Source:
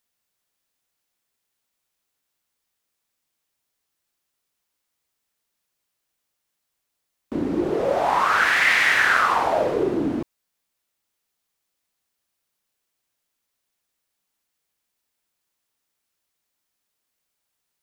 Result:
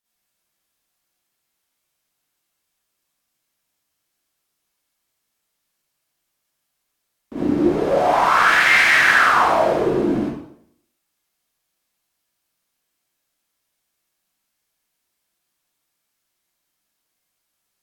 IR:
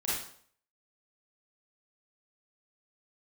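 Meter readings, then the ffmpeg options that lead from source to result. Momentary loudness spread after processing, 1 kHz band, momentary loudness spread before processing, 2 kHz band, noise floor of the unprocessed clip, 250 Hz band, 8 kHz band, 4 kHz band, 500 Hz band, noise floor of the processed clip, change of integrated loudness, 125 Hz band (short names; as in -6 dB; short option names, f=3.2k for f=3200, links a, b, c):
11 LU, +4.5 dB, 12 LU, +4.0 dB, -79 dBFS, +5.0 dB, +4.0 dB, +4.0 dB, +4.0 dB, -76 dBFS, +4.0 dB, +5.0 dB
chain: -filter_complex "[1:a]atrim=start_sample=2205,asetrate=36162,aresample=44100[a];[0:a][a]afir=irnorm=-1:irlink=0,volume=-3.5dB"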